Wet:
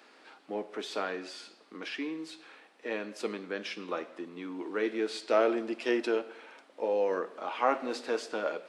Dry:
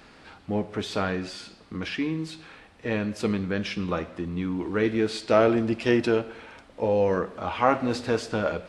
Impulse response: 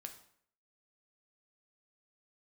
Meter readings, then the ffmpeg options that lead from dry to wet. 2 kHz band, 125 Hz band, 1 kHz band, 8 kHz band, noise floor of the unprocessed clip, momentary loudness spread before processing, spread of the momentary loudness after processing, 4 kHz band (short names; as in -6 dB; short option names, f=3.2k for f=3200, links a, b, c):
-5.5 dB, under -20 dB, -5.5 dB, -5.5 dB, -53 dBFS, 15 LU, 15 LU, -5.5 dB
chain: -af "highpass=f=290:w=0.5412,highpass=f=290:w=1.3066,volume=-5.5dB"